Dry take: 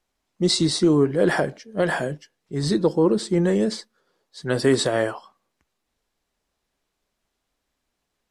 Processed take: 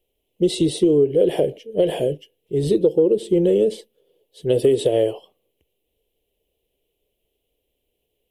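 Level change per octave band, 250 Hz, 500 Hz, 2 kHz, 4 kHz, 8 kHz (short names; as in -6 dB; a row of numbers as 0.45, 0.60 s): 0.0 dB, +5.0 dB, under -10 dB, -5.0 dB, -5.5 dB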